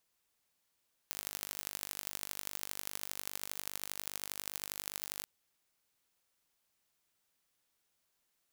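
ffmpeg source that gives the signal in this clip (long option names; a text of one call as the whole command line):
ffmpeg -f lavfi -i "aevalsrc='0.316*eq(mod(n,884),0)*(0.5+0.5*eq(mod(n,3536),0))':duration=4.13:sample_rate=44100" out.wav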